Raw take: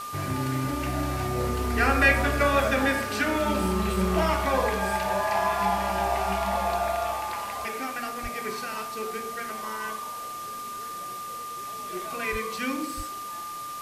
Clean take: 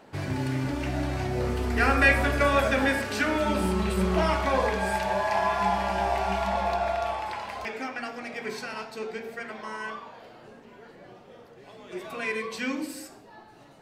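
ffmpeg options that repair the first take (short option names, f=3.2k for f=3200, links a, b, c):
-filter_complex "[0:a]bandreject=f=1.2k:w=30,asplit=3[a][b][c];[a]afade=t=out:st=8.22:d=0.02[d];[b]highpass=f=140:w=0.5412,highpass=f=140:w=1.3066,afade=t=in:st=8.22:d=0.02,afade=t=out:st=8.34:d=0.02[e];[c]afade=t=in:st=8.34:d=0.02[f];[d][e][f]amix=inputs=3:normalize=0,asplit=3[g][h][i];[g]afade=t=out:st=12.31:d=0.02[j];[h]highpass=f=140:w=0.5412,highpass=f=140:w=1.3066,afade=t=in:st=12.31:d=0.02,afade=t=out:st=12.43:d=0.02[k];[i]afade=t=in:st=12.43:d=0.02[l];[j][k][l]amix=inputs=3:normalize=0,asplit=3[m][n][o];[m]afade=t=out:st=12.96:d=0.02[p];[n]highpass=f=140:w=0.5412,highpass=f=140:w=1.3066,afade=t=in:st=12.96:d=0.02,afade=t=out:st=13.08:d=0.02[q];[o]afade=t=in:st=13.08:d=0.02[r];[p][q][r]amix=inputs=3:normalize=0,afwtdn=0.0071"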